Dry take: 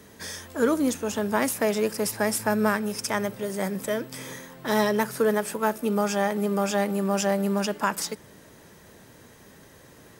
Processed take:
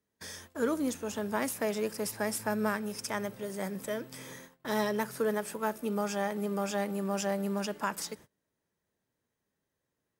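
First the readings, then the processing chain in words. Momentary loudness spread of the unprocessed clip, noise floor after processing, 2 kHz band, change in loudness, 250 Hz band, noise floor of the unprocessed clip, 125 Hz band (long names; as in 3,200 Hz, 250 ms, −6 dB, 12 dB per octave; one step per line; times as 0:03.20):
9 LU, −85 dBFS, −7.5 dB, −7.5 dB, −7.5 dB, −52 dBFS, −7.5 dB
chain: noise gate −42 dBFS, range −26 dB
level −7.5 dB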